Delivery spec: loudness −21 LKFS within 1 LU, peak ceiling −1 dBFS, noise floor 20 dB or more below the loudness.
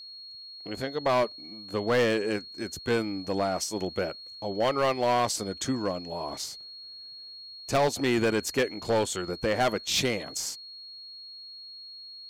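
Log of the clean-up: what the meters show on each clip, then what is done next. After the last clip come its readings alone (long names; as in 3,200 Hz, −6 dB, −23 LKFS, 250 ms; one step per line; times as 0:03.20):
share of clipped samples 1.2%; peaks flattened at −19.0 dBFS; interfering tone 4,300 Hz; level of the tone −42 dBFS; integrated loudness −28.5 LKFS; sample peak −19.0 dBFS; target loudness −21.0 LKFS
→ clipped peaks rebuilt −19 dBFS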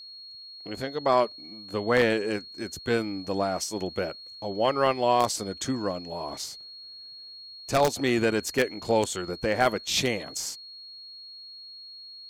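share of clipped samples 0.0%; interfering tone 4,300 Hz; level of the tone −42 dBFS
→ notch filter 4,300 Hz, Q 30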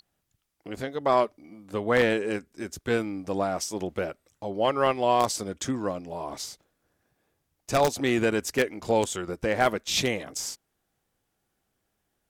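interfering tone none found; integrated loudness −27.0 LKFS; sample peak −9.5 dBFS; target loudness −21.0 LKFS
→ level +6 dB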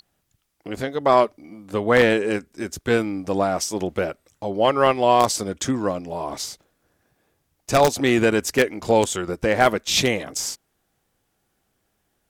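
integrated loudness −21.0 LKFS; sample peak −3.5 dBFS; background noise floor −72 dBFS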